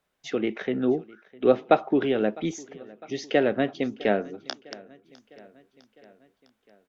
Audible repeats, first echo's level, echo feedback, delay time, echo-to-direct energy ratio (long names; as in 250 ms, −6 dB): 3, −22.5 dB, 60%, 655 ms, −20.5 dB